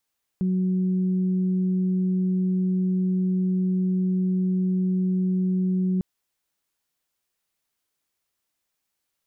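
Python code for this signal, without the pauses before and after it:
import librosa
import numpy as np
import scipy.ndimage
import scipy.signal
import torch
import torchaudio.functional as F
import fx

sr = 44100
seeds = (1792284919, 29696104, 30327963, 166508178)

y = fx.additive_steady(sr, length_s=5.6, hz=185.0, level_db=-20.0, upper_db=(-15.5,))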